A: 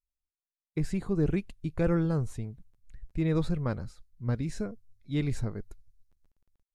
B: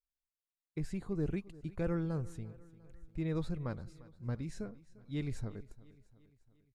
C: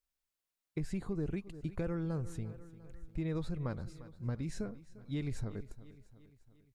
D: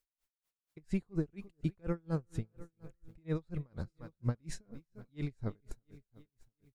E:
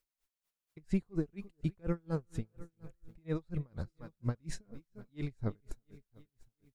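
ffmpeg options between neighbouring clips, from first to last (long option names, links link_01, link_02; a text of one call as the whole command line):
ffmpeg -i in.wav -af "aecho=1:1:349|698|1047|1396:0.1|0.053|0.0281|0.0149,volume=-8dB" out.wav
ffmpeg -i in.wav -af "acompressor=threshold=-37dB:ratio=6,volume=4.5dB" out.wav
ffmpeg -i in.wav -af "aeval=exprs='val(0)*pow(10,-38*(0.5-0.5*cos(2*PI*4.2*n/s))/20)':channel_layout=same,volume=6dB" out.wav
ffmpeg -i in.wav -af "aphaser=in_gain=1:out_gain=1:delay=5:decay=0.24:speed=1.1:type=sinusoidal" out.wav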